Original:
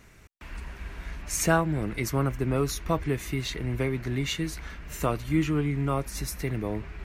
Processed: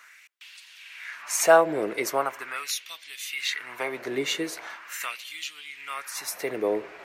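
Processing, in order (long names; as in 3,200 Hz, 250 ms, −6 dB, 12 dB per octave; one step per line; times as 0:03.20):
auto-filter high-pass sine 0.41 Hz 430–3,600 Hz
delay with a band-pass on its return 64 ms, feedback 59%, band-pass 430 Hz, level −21 dB
level +3 dB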